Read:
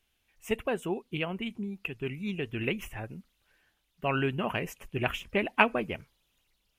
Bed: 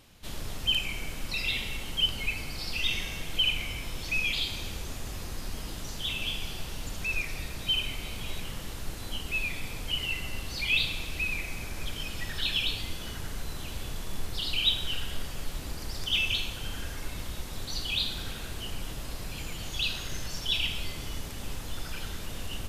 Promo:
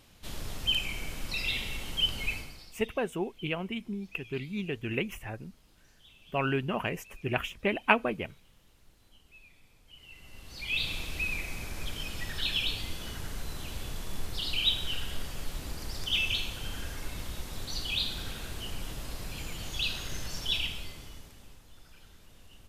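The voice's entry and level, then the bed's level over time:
2.30 s, -0.5 dB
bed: 2.34 s -1.5 dB
2.84 s -25 dB
9.85 s -25 dB
10.92 s -1.5 dB
20.53 s -1.5 dB
21.64 s -18.5 dB

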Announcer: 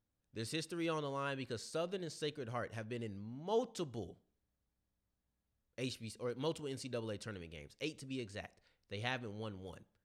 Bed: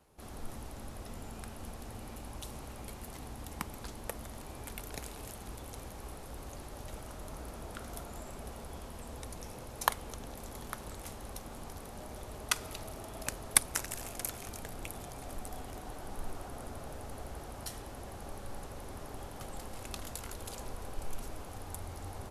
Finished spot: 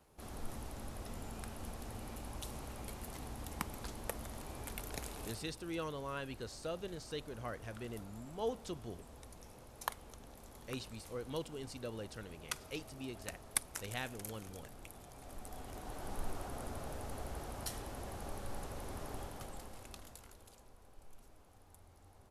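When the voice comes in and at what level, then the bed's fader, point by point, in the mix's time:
4.90 s, -2.5 dB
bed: 5.28 s -1 dB
5.54 s -10 dB
15.05 s -10 dB
16.09 s 0 dB
19.16 s 0 dB
20.66 s -18.5 dB

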